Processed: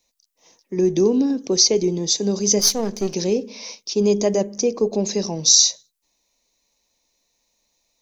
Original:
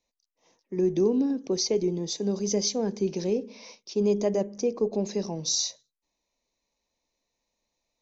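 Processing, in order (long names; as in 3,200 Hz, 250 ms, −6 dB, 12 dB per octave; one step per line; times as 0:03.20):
0:02.59–0:03.14: gain on one half-wave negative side −7 dB
high-shelf EQ 3,900 Hz +11.5 dB
level +6 dB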